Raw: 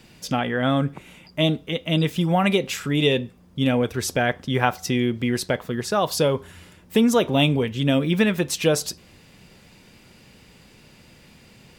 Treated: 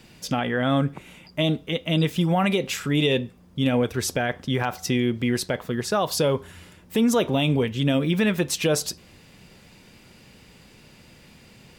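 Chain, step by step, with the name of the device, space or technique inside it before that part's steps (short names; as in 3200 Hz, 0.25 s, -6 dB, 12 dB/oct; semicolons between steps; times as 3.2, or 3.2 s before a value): clipper into limiter (hard clip -5.5 dBFS, distortion -40 dB; limiter -12.5 dBFS, peak gain reduction 7 dB)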